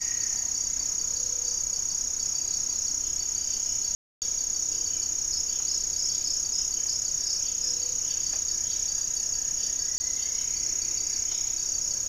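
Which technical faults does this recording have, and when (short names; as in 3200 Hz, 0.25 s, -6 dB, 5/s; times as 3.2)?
3.95–4.22 gap 0.268 s
9.98–10 gap 20 ms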